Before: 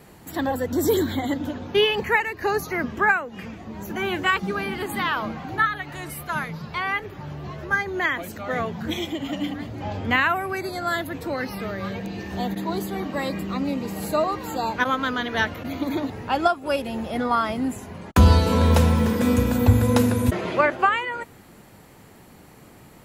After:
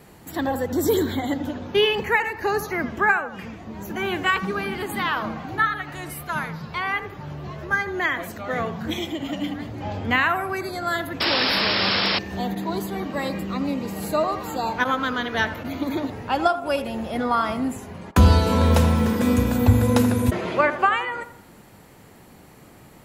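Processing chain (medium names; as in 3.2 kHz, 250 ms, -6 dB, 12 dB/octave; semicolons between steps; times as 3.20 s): band-passed feedback delay 82 ms, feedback 46%, band-pass 820 Hz, level -10.5 dB; painted sound noise, 11.20–12.19 s, 200–5500 Hz -22 dBFS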